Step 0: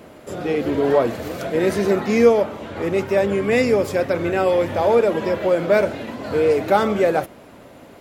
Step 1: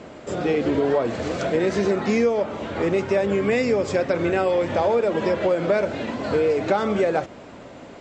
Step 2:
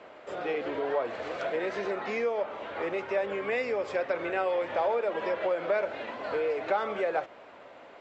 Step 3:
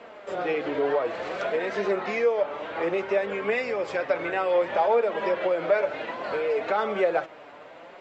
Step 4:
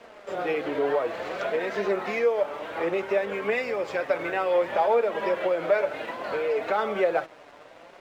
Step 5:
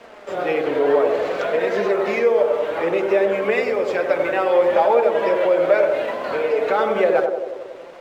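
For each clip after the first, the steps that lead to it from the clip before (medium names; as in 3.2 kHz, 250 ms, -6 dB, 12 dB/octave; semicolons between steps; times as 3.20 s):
steep low-pass 7.9 kHz 72 dB/octave; hum notches 50/100 Hz; compression 5:1, threshold -20 dBFS, peak gain reduction 11 dB; trim +2.5 dB
three-band isolator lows -18 dB, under 450 Hz, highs -16 dB, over 3.7 kHz; trim -4.5 dB
flange 0.6 Hz, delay 4.2 ms, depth 2.8 ms, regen +41%; trim +8 dB
crossover distortion -53 dBFS
band-passed feedback delay 92 ms, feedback 71%, band-pass 420 Hz, level -3 dB; trim +5 dB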